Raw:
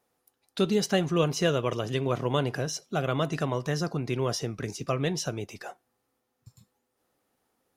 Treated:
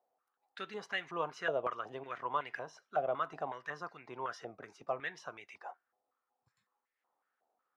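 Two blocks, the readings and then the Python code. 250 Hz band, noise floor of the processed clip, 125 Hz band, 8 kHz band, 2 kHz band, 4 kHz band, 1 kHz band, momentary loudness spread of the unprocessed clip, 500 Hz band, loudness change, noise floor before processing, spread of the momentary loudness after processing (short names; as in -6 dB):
-22.0 dB, under -85 dBFS, -27.0 dB, -24.5 dB, -4.5 dB, -15.0 dB, -3.5 dB, 10 LU, -11.0 dB, -11.0 dB, -79 dBFS, 14 LU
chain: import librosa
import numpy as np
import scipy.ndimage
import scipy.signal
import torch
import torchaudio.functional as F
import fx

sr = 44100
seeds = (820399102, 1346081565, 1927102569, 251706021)

y = fx.filter_held_bandpass(x, sr, hz=5.4, low_hz=690.0, high_hz=2000.0)
y = y * librosa.db_to_amplitude(2.0)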